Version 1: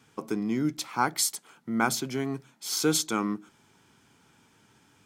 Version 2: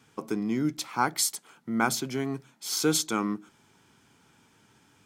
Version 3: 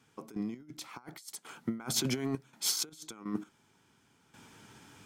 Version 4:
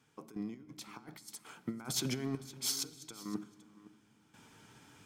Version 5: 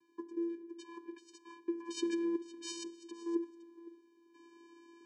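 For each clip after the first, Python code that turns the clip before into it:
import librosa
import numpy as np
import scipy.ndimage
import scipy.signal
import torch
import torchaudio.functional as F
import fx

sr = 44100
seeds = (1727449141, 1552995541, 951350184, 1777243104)

y1 = x
y2 = fx.over_compress(y1, sr, threshold_db=-33.0, ratio=-0.5)
y2 = fx.step_gate(y2, sr, bpm=83, pattern='..x.....xxxxx.xx', floor_db=-12.0, edge_ms=4.5)
y3 = y2 + 10.0 ** (-18.0 / 20.0) * np.pad(y2, (int(513 * sr / 1000.0), 0))[:len(y2)]
y3 = fx.room_shoebox(y3, sr, seeds[0], volume_m3=3600.0, walls='mixed', distance_m=0.43)
y3 = F.gain(torch.from_numpy(y3), -4.0).numpy()
y4 = fx.vocoder(y3, sr, bands=8, carrier='square', carrier_hz=338.0)
y4 = F.gain(torch.from_numpy(y4), 2.5).numpy()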